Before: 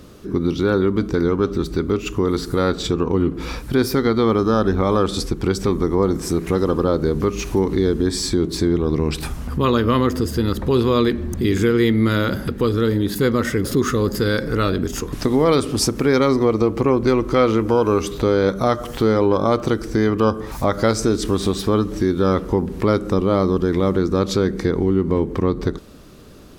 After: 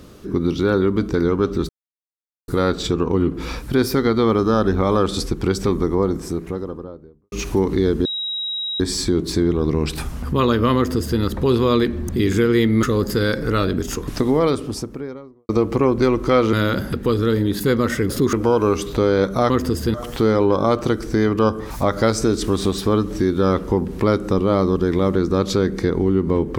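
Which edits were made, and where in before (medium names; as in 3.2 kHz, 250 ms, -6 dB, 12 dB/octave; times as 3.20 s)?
1.69–2.48 s: mute
5.63–7.32 s: studio fade out
8.05 s: add tone 3.83 kHz -22.5 dBFS 0.75 s
10.01–10.45 s: copy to 18.75 s
12.08–13.88 s: move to 17.58 s
15.11–16.54 s: studio fade out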